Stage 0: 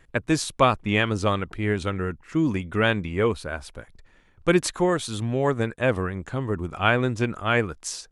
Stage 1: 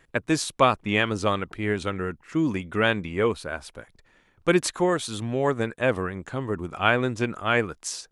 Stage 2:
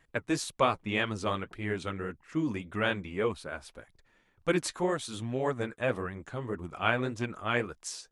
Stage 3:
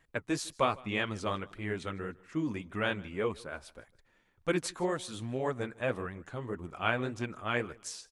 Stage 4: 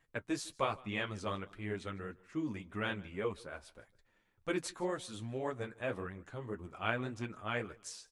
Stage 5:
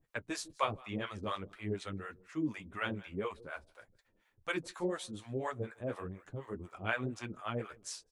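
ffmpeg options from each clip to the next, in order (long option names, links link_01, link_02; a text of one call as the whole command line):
ffmpeg -i in.wav -af "lowshelf=frequency=97:gain=-10.5" out.wav
ffmpeg -i in.wav -af "flanger=delay=1:depth=8.6:regen=-38:speed=1.8:shape=sinusoidal,volume=-3dB" out.wav
ffmpeg -i in.wav -af "aecho=1:1:154|308:0.0668|0.0201,volume=-2.5dB" out.wav
ffmpeg -i in.wav -af "flanger=delay=8.7:depth=2.2:regen=-39:speed=0.43:shape=triangular,volume=-1dB" out.wav
ffmpeg -i in.wav -filter_complex "[0:a]acrossover=split=570[link_01][link_02];[link_01]aeval=exprs='val(0)*(1-1/2+1/2*cos(2*PI*4.1*n/s))':channel_layout=same[link_03];[link_02]aeval=exprs='val(0)*(1-1/2-1/2*cos(2*PI*4.1*n/s))':channel_layout=same[link_04];[link_03][link_04]amix=inputs=2:normalize=0,volume=5dB" out.wav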